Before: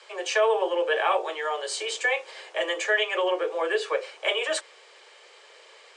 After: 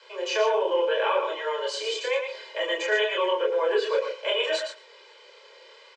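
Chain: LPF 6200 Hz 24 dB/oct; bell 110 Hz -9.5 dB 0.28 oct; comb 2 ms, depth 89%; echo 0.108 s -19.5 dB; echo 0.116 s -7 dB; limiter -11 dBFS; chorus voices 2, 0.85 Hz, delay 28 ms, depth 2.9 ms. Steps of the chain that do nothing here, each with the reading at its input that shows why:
bell 110 Hz: input band starts at 300 Hz

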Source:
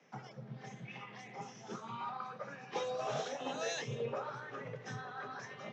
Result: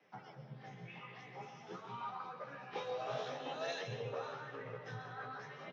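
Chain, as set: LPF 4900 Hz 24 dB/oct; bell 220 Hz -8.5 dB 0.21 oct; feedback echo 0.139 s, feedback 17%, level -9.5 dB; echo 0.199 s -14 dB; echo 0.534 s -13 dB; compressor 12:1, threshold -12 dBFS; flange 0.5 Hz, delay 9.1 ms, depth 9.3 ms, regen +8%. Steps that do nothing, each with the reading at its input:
compressor, threshold -12 dBFS: input peak -25.5 dBFS

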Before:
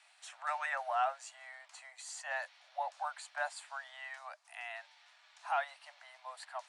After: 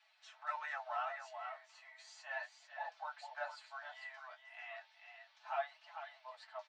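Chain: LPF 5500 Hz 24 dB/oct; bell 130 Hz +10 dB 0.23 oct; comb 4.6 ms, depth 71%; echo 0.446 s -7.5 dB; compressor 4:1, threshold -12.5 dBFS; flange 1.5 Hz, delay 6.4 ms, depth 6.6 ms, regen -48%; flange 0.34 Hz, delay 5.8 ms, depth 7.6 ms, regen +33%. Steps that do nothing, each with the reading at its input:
bell 130 Hz: input band starts at 510 Hz; compressor, threshold -12.5 dBFS: input peak -20.0 dBFS

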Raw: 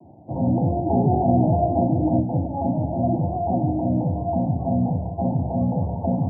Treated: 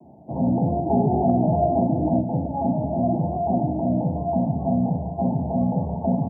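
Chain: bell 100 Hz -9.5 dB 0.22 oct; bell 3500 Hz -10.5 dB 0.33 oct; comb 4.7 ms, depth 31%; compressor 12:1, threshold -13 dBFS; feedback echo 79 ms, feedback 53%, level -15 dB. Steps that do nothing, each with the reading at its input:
bell 3500 Hz: input band ends at 960 Hz

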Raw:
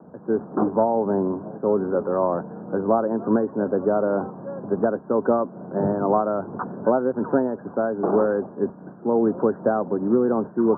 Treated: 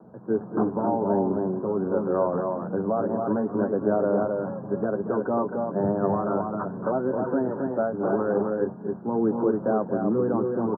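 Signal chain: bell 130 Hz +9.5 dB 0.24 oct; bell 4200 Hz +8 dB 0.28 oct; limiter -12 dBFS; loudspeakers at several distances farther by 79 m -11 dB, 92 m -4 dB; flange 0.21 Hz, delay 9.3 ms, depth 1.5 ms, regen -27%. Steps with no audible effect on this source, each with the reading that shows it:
bell 4200 Hz: input band ends at 1600 Hz

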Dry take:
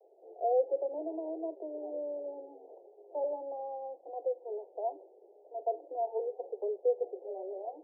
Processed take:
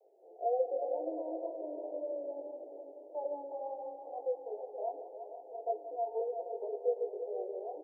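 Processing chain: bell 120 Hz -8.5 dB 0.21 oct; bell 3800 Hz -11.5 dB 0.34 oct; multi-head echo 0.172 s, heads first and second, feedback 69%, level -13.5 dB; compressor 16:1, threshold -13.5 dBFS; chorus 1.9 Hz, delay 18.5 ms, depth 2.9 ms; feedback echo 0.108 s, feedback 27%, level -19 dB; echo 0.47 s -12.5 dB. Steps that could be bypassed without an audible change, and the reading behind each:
bell 120 Hz: input band starts at 270 Hz; bell 3800 Hz: input band ends at 960 Hz; compressor, threshold -13.5 dBFS: input peak -18.5 dBFS

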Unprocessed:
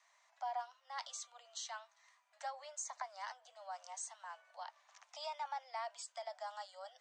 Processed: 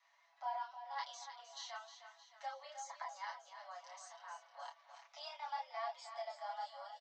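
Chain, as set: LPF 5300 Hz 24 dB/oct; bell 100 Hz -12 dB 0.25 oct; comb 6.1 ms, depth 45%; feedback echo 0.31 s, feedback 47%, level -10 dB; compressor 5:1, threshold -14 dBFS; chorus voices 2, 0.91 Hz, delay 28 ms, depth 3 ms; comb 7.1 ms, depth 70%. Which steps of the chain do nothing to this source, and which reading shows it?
bell 100 Hz: input band starts at 480 Hz; compressor, threshold -14 dBFS: input peak -29.0 dBFS

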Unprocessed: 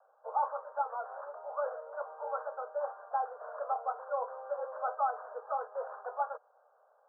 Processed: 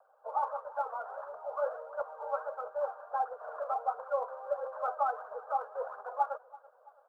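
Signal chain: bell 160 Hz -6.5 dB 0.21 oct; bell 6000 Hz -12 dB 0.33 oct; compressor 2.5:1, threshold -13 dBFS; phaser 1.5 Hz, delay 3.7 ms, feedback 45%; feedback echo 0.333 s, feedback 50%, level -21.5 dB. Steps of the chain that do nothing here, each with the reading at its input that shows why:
bell 160 Hz: input band starts at 430 Hz; bell 6000 Hz: input band ends at 1600 Hz; compressor, threshold -13 dBFS: input peak -20.0 dBFS

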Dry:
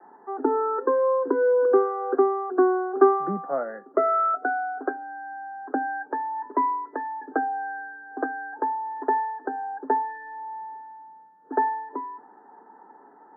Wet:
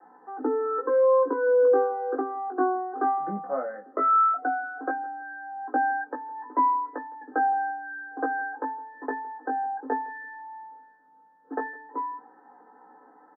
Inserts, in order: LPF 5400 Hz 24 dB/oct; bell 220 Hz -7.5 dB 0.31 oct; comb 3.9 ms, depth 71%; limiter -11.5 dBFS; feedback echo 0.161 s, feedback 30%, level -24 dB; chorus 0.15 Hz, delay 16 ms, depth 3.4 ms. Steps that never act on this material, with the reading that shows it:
LPF 5400 Hz: input band ends at 1800 Hz

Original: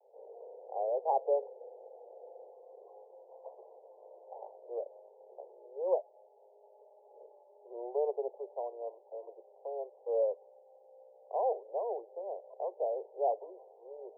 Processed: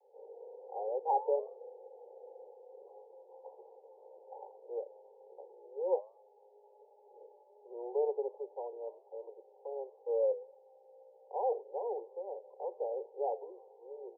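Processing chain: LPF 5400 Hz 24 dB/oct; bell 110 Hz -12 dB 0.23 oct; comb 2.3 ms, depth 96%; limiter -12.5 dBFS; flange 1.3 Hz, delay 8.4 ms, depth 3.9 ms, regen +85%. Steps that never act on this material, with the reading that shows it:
LPF 5400 Hz: input band ends at 1000 Hz; bell 110 Hz: input band starts at 340 Hz; limiter -12.5 dBFS: input peak -14.5 dBFS

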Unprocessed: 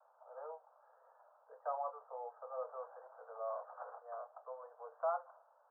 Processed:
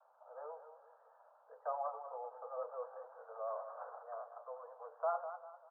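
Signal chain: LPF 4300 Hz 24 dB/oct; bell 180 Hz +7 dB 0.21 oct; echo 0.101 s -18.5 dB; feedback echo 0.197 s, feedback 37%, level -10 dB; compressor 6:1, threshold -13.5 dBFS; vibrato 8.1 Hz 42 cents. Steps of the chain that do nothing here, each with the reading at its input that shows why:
LPF 4300 Hz: input band ends at 1600 Hz; bell 180 Hz: input band starts at 400 Hz; compressor, threshold -13.5 dBFS: input peak -25.5 dBFS

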